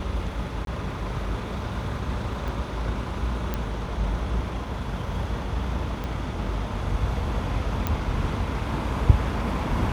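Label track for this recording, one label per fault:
0.650000	0.670000	gap 22 ms
2.480000	2.480000	pop
3.540000	3.540000	pop -14 dBFS
6.040000	6.040000	pop -19 dBFS
7.870000	7.870000	pop -11 dBFS

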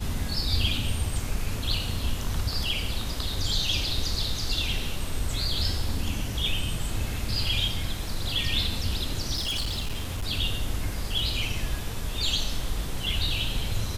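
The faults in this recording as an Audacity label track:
9.350000	10.240000	clipped -25.5 dBFS

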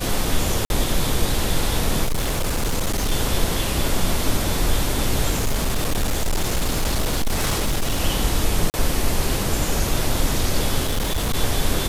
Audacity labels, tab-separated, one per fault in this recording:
0.650000	0.700000	gap 51 ms
2.040000	3.120000	clipped -17.5 dBFS
5.300000	8.010000	clipped -16.5 dBFS
8.700000	8.740000	gap 39 ms
10.830000	11.350000	clipped -18 dBFS

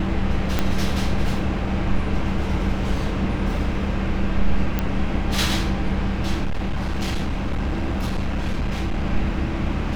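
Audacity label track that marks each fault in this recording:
0.590000	0.590000	pop -6 dBFS
4.790000	4.790000	pop -9 dBFS
6.430000	9.040000	clipped -19 dBFS

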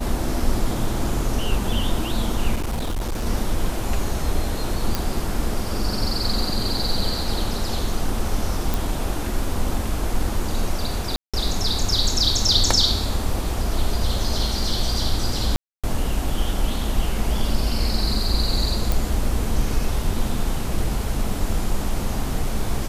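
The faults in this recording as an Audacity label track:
2.550000	3.260000	clipped -21 dBFS
4.950000	4.950000	pop
8.740000	8.740000	pop
11.160000	11.340000	gap 0.176 s
15.560000	15.840000	gap 0.276 s
18.920000	18.920000	pop

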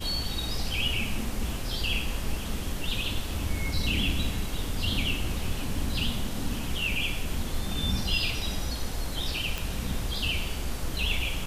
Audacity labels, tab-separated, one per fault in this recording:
9.580000	9.580000	pop

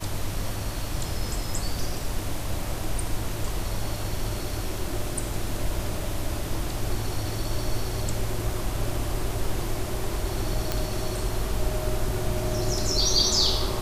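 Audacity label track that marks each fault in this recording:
10.720000	10.720000	pop -10 dBFS

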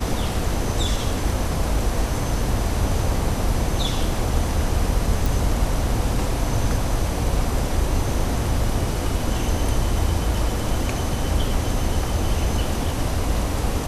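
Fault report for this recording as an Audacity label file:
5.260000	5.260000	pop

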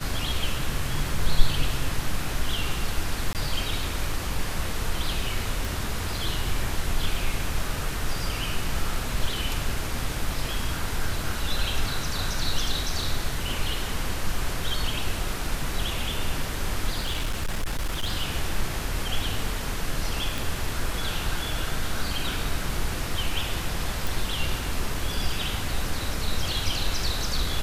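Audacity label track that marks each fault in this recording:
3.330000	3.350000	gap 18 ms
5.650000	5.650000	pop
16.980000	18.120000	clipped -22.5 dBFS
20.380000	20.380000	pop
24.070000	24.070000	pop

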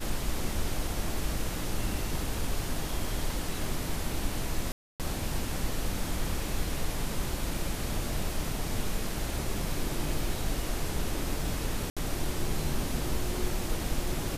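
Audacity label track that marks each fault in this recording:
4.720000	5.000000	gap 0.278 s
11.900000	11.970000	gap 66 ms

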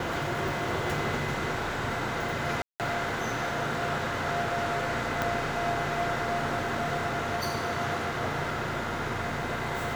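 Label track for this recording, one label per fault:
2.620000	2.800000	gap 0.178 s
5.220000	5.220000	pop -13 dBFS

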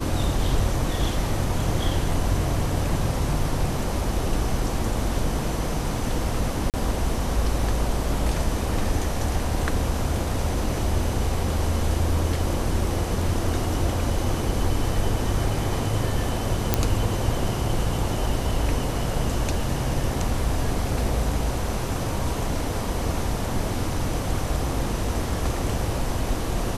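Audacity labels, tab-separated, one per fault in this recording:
6.700000	6.740000	gap 38 ms
16.740000	16.740000	pop -3 dBFS

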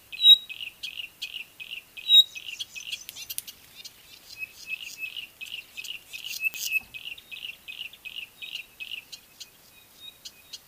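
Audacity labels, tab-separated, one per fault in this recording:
6.540000	6.540000	pop -14 dBFS

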